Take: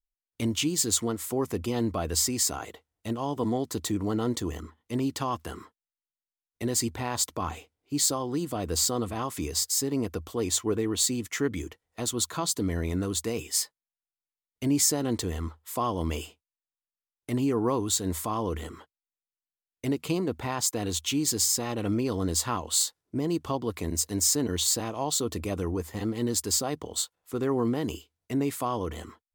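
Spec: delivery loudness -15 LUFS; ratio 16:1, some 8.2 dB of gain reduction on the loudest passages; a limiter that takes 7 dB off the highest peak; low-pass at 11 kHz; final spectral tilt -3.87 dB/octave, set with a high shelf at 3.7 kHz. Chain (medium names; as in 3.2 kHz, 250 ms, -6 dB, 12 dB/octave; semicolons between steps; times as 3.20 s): low-pass 11 kHz; treble shelf 3.7 kHz +5.5 dB; compression 16:1, threshold -25 dBFS; trim +17 dB; peak limiter -3.5 dBFS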